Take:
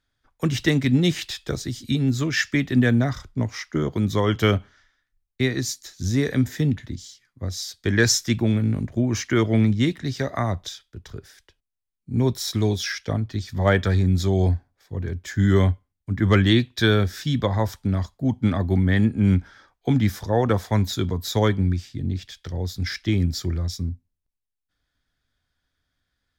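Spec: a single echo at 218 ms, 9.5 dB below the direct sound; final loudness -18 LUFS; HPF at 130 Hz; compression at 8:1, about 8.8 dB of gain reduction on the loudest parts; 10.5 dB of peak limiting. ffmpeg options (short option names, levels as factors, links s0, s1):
-af "highpass=130,acompressor=threshold=0.0631:ratio=8,alimiter=limit=0.0668:level=0:latency=1,aecho=1:1:218:0.335,volume=5.62"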